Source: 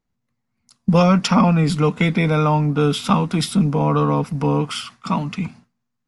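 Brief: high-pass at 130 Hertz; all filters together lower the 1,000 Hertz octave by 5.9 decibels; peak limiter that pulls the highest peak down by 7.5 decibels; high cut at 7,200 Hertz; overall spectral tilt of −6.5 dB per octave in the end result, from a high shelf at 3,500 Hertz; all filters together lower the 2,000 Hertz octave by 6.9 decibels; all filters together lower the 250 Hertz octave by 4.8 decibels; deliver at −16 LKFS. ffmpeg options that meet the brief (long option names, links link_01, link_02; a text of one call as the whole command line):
ffmpeg -i in.wav -af "highpass=130,lowpass=7200,equalizer=frequency=250:width_type=o:gain=-6,equalizer=frequency=1000:width_type=o:gain=-5,equalizer=frequency=2000:width_type=o:gain=-5,highshelf=frequency=3500:gain=-7,volume=9dB,alimiter=limit=-6dB:level=0:latency=1" out.wav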